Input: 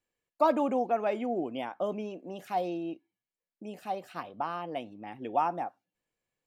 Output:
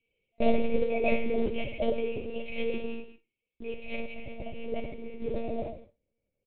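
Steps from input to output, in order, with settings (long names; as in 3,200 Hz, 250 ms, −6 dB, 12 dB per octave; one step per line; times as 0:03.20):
brick-wall band-stop 670–2,100 Hz
in parallel at −2.5 dB: downward compressor 6 to 1, threshold −39 dBFS, peak gain reduction 16.5 dB
on the sum: low-pass filter sweep 2,400 Hz → 1,200 Hz, 0:03.67–0:05.85
noise that follows the level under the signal 20 dB
reverb whose tail is shaped and stops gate 250 ms falling, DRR −0.5 dB
one-pitch LPC vocoder at 8 kHz 230 Hz
on a send: repeating echo 63 ms, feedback 25%, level −19.5 dB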